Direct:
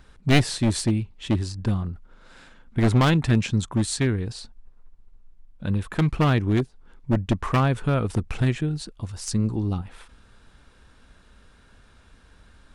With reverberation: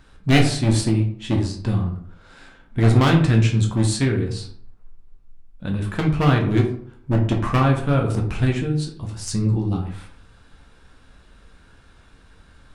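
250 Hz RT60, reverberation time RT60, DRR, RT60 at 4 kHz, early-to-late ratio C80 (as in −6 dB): 0.65 s, 0.55 s, 0.5 dB, 0.35 s, 11.5 dB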